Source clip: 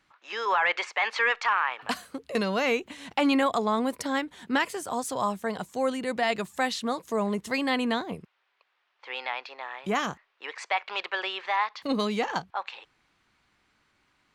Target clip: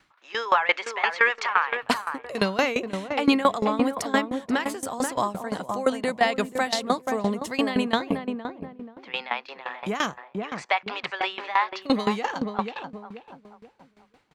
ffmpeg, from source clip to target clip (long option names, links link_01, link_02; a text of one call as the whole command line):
ffmpeg -i in.wav -filter_complex "[0:a]asplit=2[link_01][link_02];[link_02]adelay=483,lowpass=frequency=990:poles=1,volume=-5dB,asplit=2[link_03][link_04];[link_04]adelay=483,lowpass=frequency=990:poles=1,volume=0.34,asplit=2[link_05][link_06];[link_06]adelay=483,lowpass=frequency=990:poles=1,volume=0.34,asplit=2[link_07][link_08];[link_08]adelay=483,lowpass=frequency=990:poles=1,volume=0.34[link_09];[link_01][link_03][link_05][link_07][link_09]amix=inputs=5:normalize=0,aeval=exprs='val(0)*pow(10,-18*if(lt(mod(5.8*n/s,1),2*abs(5.8)/1000),1-mod(5.8*n/s,1)/(2*abs(5.8)/1000),(mod(5.8*n/s,1)-2*abs(5.8)/1000)/(1-2*abs(5.8)/1000))/20)':channel_layout=same,volume=8.5dB" out.wav